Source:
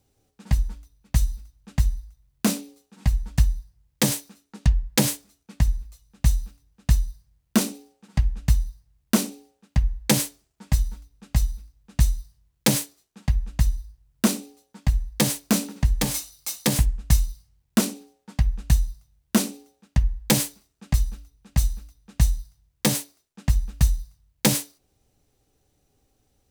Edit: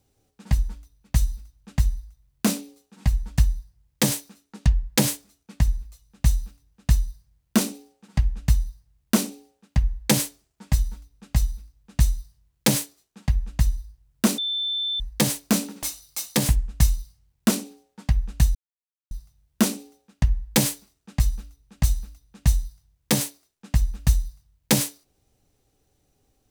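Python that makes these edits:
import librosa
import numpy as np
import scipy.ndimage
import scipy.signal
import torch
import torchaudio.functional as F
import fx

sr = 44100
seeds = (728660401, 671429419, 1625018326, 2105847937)

y = fx.edit(x, sr, fx.bleep(start_s=14.38, length_s=0.62, hz=3540.0, db=-23.5),
    fx.cut(start_s=15.83, length_s=0.3),
    fx.insert_silence(at_s=18.85, length_s=0.56), tone=tone)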